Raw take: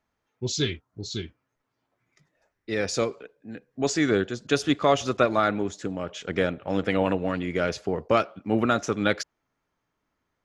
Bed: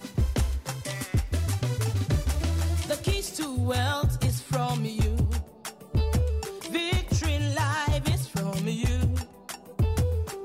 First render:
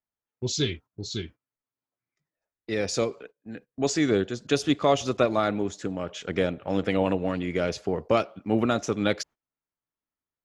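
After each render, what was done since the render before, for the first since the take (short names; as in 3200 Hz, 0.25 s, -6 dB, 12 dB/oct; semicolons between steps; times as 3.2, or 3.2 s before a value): gate -45 dBFS, range -19 dB; dynamic EQ 1500 Hz, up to -6 dB, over -38 dBFS, Q 1.6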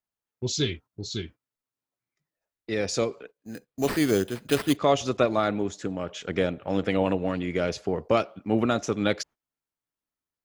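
3.38–4.77 sample-rate reducer 6600 Hz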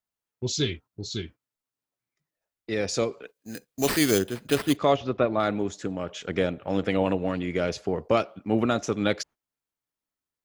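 3.23–4.19 high shelf 2300 Hz +9 dB; 4.96–5.4 air absorption 310 m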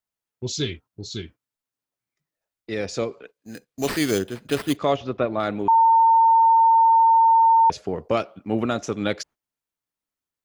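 2.85–4.56 LPF 4200 Hz -> 8000 Hz 6 dB/oct; 5.68–7.7 bleep 907 Hz -12 dBFS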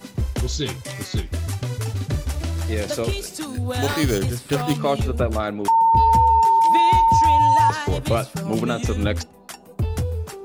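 add bed +1 dB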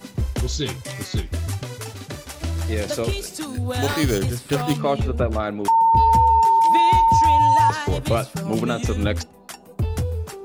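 1.62–2.41 HPF 260 Hz -> 580 Hz 6 dB/oct; 4.81–5.51 LPF 3600 Hz 6 dB/oct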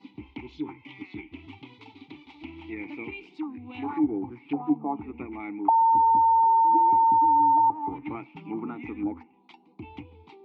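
vowel filter u; envelope low-pass 710–4500 Hz down, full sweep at -26 dBFS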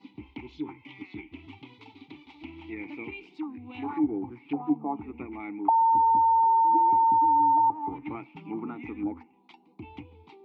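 gain -1.5 dB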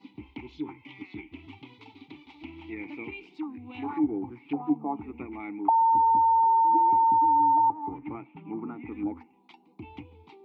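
7.72–8.92 air absorption 450 m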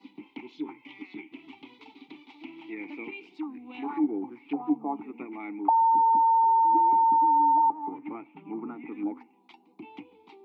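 HPF 200 Hz 24 dB/oct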